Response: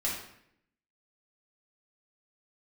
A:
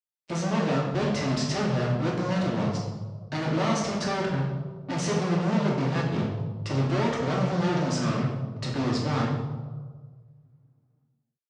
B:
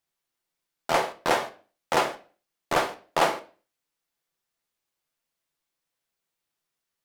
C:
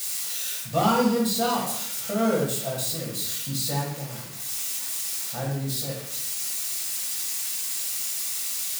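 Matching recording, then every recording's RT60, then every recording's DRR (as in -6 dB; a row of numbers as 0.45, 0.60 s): C; 1.5, 0.40, 0.70 s; -4.0, 6.0, -5.5 dB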